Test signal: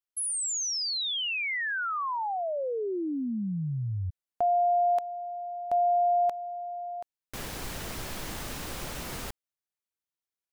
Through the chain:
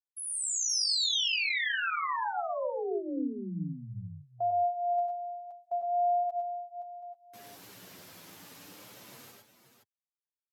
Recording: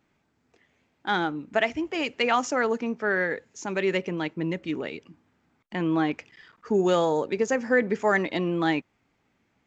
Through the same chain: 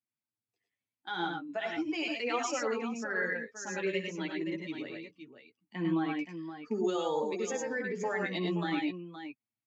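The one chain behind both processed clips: expander on every frequency bin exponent 1.5; Bessel high-pass 190 Hz, order 8; treble shelf 4 kHz +11 dB; peak limiter -22 dBFS; flange 0.43 Hz, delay 8.2 ms, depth 3.7 ms, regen -13%; distance through air 58 m; multi-tap echo 66/99/109/116/522 ms -13/-4.5/-8.5/-8.5/-9.5 dB

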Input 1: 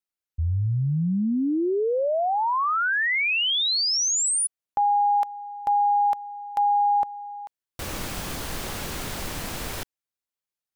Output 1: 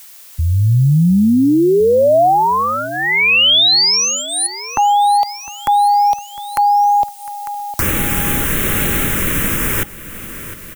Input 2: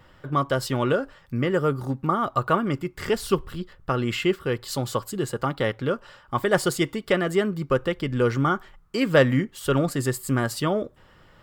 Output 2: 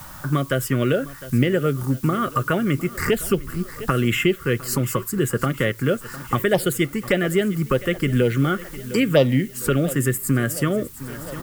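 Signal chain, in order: recorder AGC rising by 12 dB/s; dynamic bell 690 Hz, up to +4 dB, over -26 dBFS, Q 2; touch-sensitive phaser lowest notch 430 Hz, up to 1.6 kHz, full sweep at -12 dBFS; treble shelf 9.2 kHz +10 dB; added noise blue -52 dBFS; feedback delay 706 ms, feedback 52%, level -19 dB; three bands compressed up and down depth 40%; trim +3.5 dB

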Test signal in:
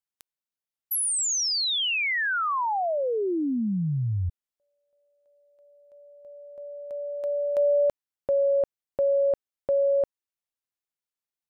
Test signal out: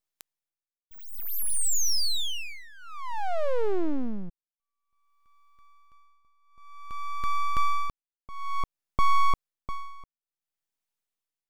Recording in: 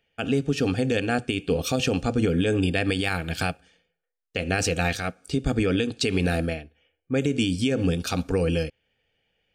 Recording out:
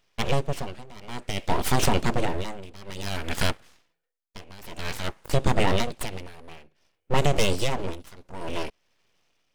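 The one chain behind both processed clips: full-wave rectifier; tremolo 0.55 Hz, depth 94%; trim +5.5 dB

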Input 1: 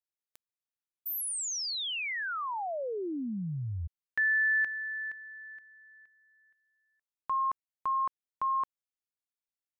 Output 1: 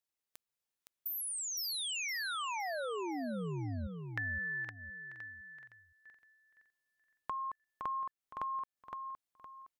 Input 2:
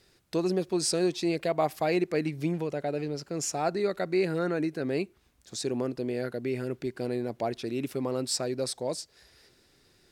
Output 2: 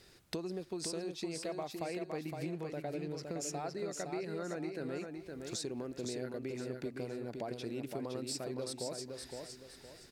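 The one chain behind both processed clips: compression 10:1, threshold -40 dBFS; feedback delay 514 ms, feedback 33%, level -5 dB; trim +2.5 dB

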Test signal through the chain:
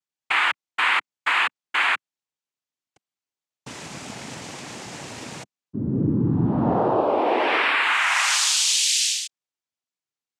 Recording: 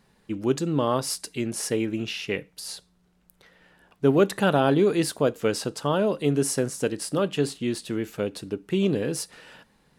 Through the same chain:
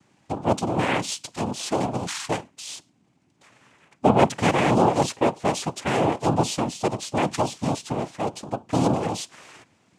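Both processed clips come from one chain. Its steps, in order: noise-vocoded speech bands 4; trim +1.5 dB

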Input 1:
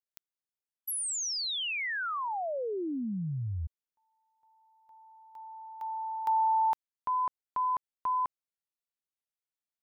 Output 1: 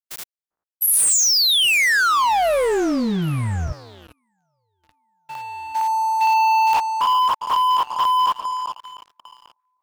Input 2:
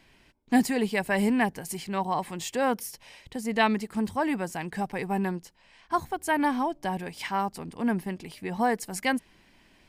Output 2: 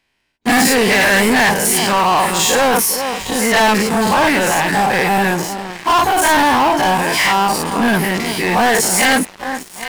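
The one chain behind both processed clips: every event in the spectrogram widened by 120 ms; bass shelf 460 Hz -9 dB; echo whose repeats swap between lows and highs 400 ms, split 1.3 kHz, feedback 56%, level -13.5 dB; waveshaping leveller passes 5

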